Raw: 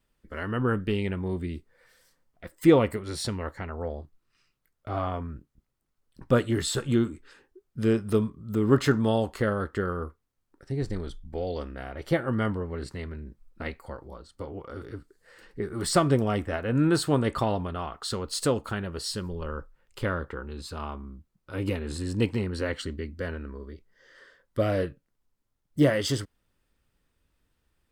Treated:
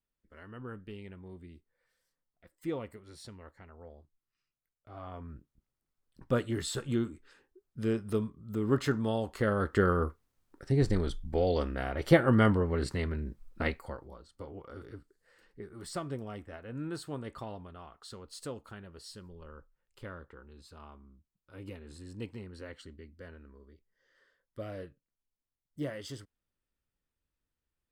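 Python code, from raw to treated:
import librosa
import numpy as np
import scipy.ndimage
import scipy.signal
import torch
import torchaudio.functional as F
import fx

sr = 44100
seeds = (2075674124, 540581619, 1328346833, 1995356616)

y = fx.gain(x, sr, db=fx.line((4.93, -17.5), (5.34, -7.0), (9.22, -7.0), (9.83, 3.5), (13.65, 3.5), (14.16, -7.0), (14.87, -7.0), (15.89, -15.5)))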